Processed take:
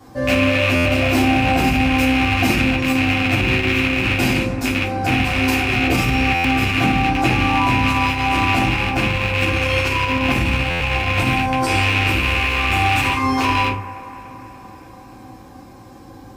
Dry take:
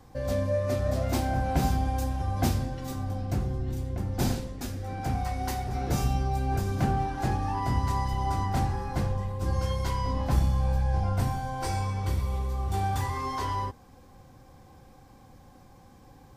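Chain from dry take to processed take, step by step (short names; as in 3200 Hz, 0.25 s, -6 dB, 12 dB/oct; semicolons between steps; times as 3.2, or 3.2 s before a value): rattling part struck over -31 dBFS, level -16 dBFS; bell 340 Hz +3 dB 0.21 oct; on a send: band-limited delay 0.289 s, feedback 65%, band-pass 860 Hz, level -14.5 dB; on the sum: shoebox room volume 200 m³, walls furnished, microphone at 3.3 m; limiter -11.5 dBFS, peak gain reduction 8 dB; HPF 47 Hz; low shelf 66 Hz -9 dB; stuck buffer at 0.75/6.34/10.7, samples 512, times 8; gain +5.5 dB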